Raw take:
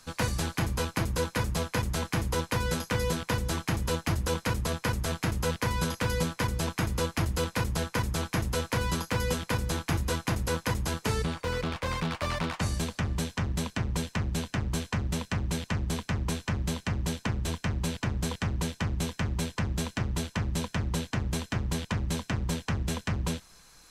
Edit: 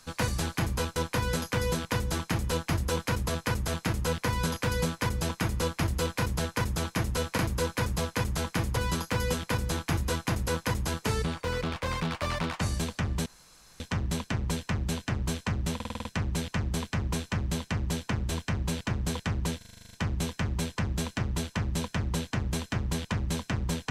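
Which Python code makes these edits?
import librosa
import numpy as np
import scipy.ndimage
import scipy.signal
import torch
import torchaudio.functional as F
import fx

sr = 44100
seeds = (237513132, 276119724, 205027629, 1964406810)

y = fx.edit(x, sr, fx.move(start_s=0.96, length_s=1.38, to_s=8.76),
    fx.insert_room_tone(at_s=13.26, length_s=0.54),
    fx.stutter(start_s=15.21, slice_s=0.05, count=7),
    fx.stutter(start_s=18.73, slice_s=0.04, count=10), tone=tone)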